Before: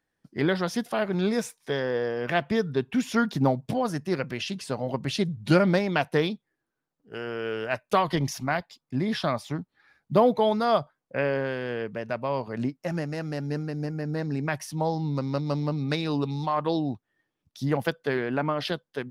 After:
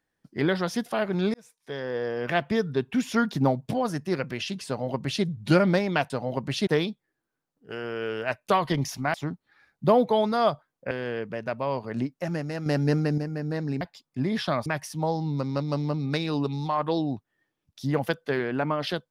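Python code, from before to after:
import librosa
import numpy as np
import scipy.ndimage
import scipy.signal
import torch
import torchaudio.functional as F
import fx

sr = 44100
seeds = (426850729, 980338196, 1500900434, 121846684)

y = fx.edit(x, sr, fx.fade_in_span(start_s=1.34, length_s=0.84),
    fx.duplicate(start_s=4.67, length_s=0.57, to_s=6.1),
    fx.move(start_s=8.57, length_s=0.85, to_s=14.44),
    fx.cut(start_s=11.19, length_s=0.35),
    fx.clip_gain(start_s=13.29, length_s=0.52, db=7.0), tone=tone)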